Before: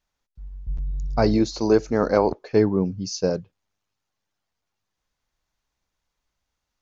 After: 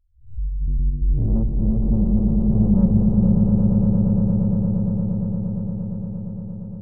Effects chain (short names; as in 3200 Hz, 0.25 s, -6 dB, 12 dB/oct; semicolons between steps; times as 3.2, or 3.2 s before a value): spectral swells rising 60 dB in 0.42 s; inverse Chebyshev band-stop 730–5500 Hz, stop band 70 dB; in parallel at +2.5 dB: compressor 5:1, threshold -37 dBFS, peak gain reduction 15 dB; on the sum: loudest bins only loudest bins 4; soft clip -26.5 dBFS, distortion -11 dB; on a send: swelling echo 0.116 s, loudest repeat 8, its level -5 dB; on the sum: gain +9 dB